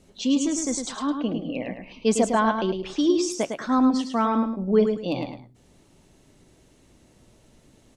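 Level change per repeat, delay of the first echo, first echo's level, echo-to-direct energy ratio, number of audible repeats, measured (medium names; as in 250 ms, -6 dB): -11.5 dB, 106 ms, -6.0 dB, -5.5 dB, 2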